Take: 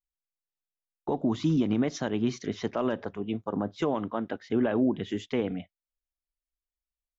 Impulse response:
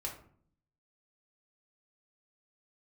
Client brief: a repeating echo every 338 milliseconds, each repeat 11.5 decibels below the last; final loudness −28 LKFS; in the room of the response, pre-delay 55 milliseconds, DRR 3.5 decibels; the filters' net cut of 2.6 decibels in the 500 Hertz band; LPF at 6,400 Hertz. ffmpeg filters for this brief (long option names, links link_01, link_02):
-filter_complex "[0:a]lowpass=6400,equalizer=frequency=500:width_type=o:gain=-3.5,aecho=1:1:338|676|1014:0.266|0.0718|0.0194,asplit=2[link_01][link_02];[1:a]atrim=start_sample=2205,adelay=55[link_03];[link_02][link_03]afir=irnorm=-1:irlink=0,volume=-3.5dB[link_04];[link_01][link_04]amix=inputs=2:normalize=0,volume=1dB"